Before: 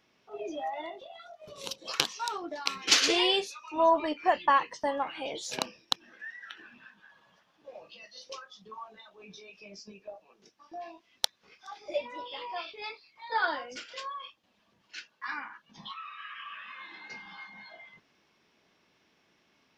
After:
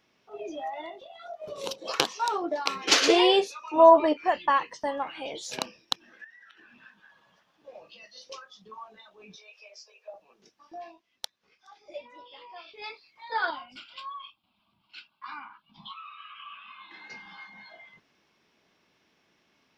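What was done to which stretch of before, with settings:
0:01.21–0:04.17: parametric band 550 Hz +10 dB 2.4 octaves
0:06.24–0:06.81: downward compressor 5 to 1, threshold −51 dBFS
0:09.36–0:10.14: Butterworth high-pass 470 Hz 72 dB per octave
0:10.82–0:12.84: duck −8.5 dB, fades 0.20 s
0:13.50–0:16.91: phaser with its sweep stopped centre 1,800 Hz, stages 6

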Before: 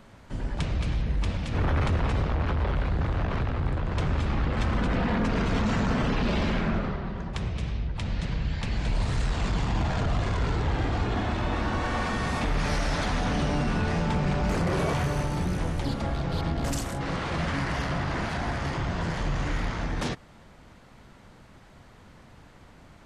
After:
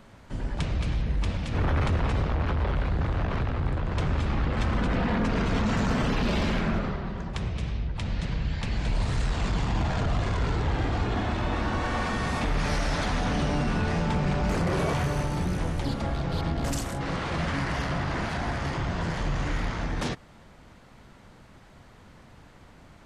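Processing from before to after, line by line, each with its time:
0:05.77–0:07.33: high-shelf EQ 8,200 Hz +10.5 dB

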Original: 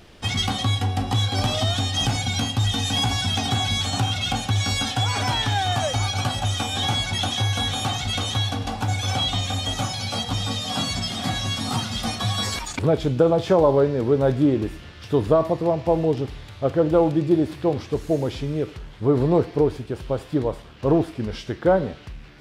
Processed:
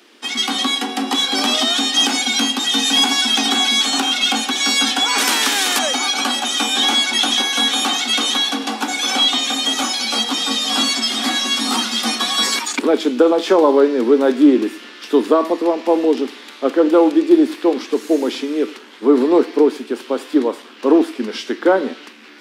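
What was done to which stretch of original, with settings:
0:05.18–0:05.79: every bin compressed towards the loudest bin 2 to 1
whole clip: Butterworth high-pass 230 Hz 72 dB per octave; parametric band 630 Hz −8.5 dB 0.83 octaves; automatic gain control gain up to 7 dB; level +3 dB

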